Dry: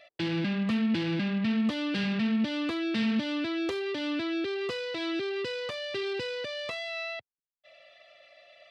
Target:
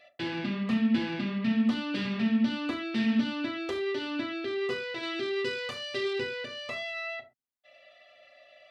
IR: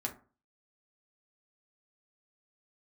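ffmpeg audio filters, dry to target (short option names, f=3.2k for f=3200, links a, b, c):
-filter_complex "[0:a]asettb=1/sr,asplit=3[a][b][c];[a]atrim=end=5.034[d];[b]atrim=start=5.03:end=6.2,asetpts=PTS-STARTPTS,afade=t=in:d=0.004:c=qsin,afade=t=out:st=1.166:d=0.004:c=qsin,highshelf=f=4.2k:g=8[e];[c]atrim=start=6.196[f];[d][e]acrossfade=d=0.004:c1=hsin:c2=qsin[g];[g][f]acrossfade=d=0.004:c1=qsin:c2=hsin[h];[1:a]atrim=start_sample=2205,atrim=end_sample=6174[i];[h][i]afir=irnorm=-1:irlink=0,volume=-2dB"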